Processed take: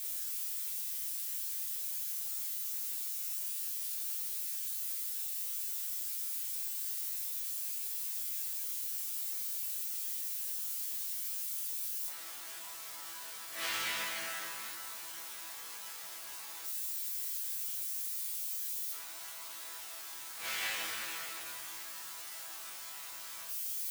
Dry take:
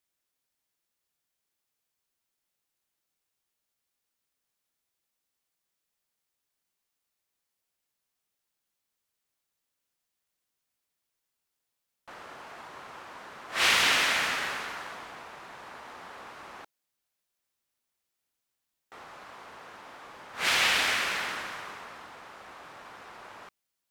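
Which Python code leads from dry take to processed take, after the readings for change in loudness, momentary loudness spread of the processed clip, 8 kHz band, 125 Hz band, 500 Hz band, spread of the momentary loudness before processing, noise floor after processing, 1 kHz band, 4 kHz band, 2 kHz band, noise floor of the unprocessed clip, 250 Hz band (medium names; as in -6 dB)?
-10.5 dB, 8 LU, +3.0 dB, under -10 dB, -12.5 dB, 23 LU, -46 dBFS, -12.5 dB, -10.0 dB, -12.5 dB, -84 dBFS, -13.0 dB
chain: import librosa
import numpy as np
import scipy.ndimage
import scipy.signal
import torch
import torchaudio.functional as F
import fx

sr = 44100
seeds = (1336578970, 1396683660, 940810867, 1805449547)

y = x + 0.5 * 10.0 ** (-20.0 / 20.0) * np.diff(np.sign(x), prepend=np.sign(x[:1]))
y = fx.resonator_bank(y, sr, root=45, chord='fifth', decay_s=0.41)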